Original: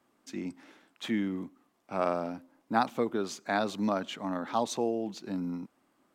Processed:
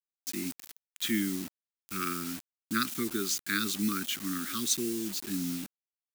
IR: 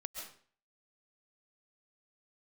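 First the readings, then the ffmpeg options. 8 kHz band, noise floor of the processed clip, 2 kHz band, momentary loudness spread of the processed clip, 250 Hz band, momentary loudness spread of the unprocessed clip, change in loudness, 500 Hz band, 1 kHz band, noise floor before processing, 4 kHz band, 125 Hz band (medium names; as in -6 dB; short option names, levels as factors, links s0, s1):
+13.0 dB, under -85 dBFS, +3.0 dB, 10 LU, 0.0 dB, 12 LU, +1.0 dB, -9.5 dB, -7.5 dB, -72 dBFS, +8.0 dB, 0.0 dB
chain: -af "asuperstop=centerf=690:order=12:qfactor=0.84,acrusher=bits=7:mix=0:aa=0.000001,crystalizer=i=3.5:c=0"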